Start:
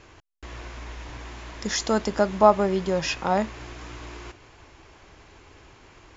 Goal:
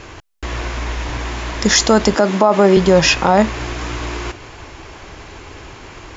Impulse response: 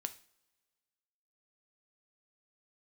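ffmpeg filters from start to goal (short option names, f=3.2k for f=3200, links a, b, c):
-filter_complex "[0:a]asettb=1/sr,asplit=3[a][b][c];[a]atrim=end=2.154[d];[b]atrim=start=2.15:end=2.77,asetpts=PTS-STARTPTS,afade=t=in:d=0.004:c=qsin,afade=t=out:st=0.616:d=0.004:c=qsin,highpass=f=180:w=0.5412,highpass=f=180:w=1.3066[e];[c]atrim=start=2.766[f];[d][e]acrossfade=d=0.004:c1=hsin:c2=qsin[g];[g][f]acrossfade=d=0.004:c1=qsin:c2=hsin,alimiter=level_in=16dB:limit=-1dB:release=50:level=0:latency=1,volume=-1dB"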